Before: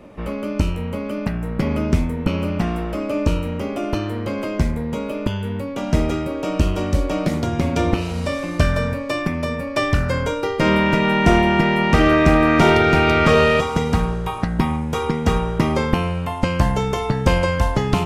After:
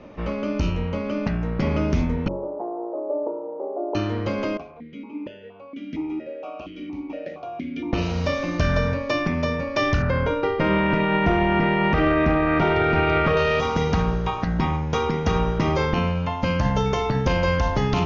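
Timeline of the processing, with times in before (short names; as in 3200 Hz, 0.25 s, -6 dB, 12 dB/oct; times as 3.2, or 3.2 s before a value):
2.28–3.95 elliptic band-pass 350–900 Hz, stop band 70 dB
4.57–7.93 vowel sequencer 4.3 Hz
10.02–13.37 LPF 2700 Hz
15.99–16.86 notch comb 370 Hz
whole clip: steep low-pass 6600 Hz 96 dB/oct; de-hum 46.77 Hz, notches 9; limiter -11.5 dBFS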